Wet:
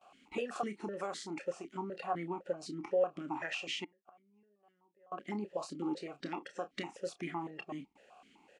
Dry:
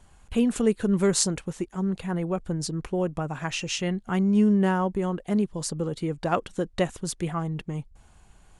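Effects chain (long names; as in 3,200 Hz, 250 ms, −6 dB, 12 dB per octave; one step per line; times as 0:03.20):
compressor on every frequency bin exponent 0.6
noise reduction from a noise print of the clip's start 12 dB
noise gate with hold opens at −44 dBFS
low-shelf EQ 490 Hz −10 dB
downward compressor 10 to 1, threshold −28 dBFS, peak gain reduction 10.5 dB
double-tracking delay 29 ms −10 dB
0:03.84–0:05.12: gate with flip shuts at −33 dBFS, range −32 dB
formant filter that steps through the vowels 7.9 Hz
level +8 dB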